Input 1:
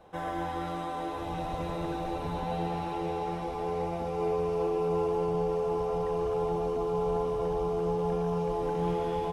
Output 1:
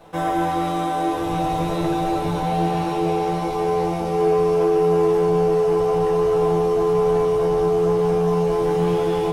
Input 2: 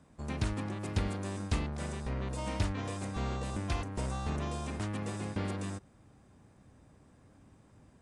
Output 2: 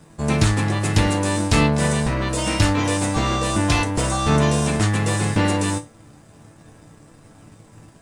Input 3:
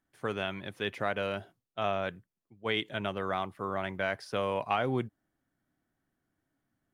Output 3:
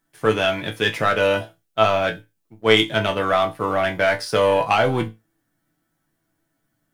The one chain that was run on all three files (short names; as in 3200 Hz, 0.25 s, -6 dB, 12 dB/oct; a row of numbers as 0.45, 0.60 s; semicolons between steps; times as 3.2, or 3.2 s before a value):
high shelf 5100 Hz +7 dB; sample leveller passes 1; resonator bank A2 sus4, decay 0.22 s; match loudness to -20 LUFS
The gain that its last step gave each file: +18.5, +25.0, +21.5 dB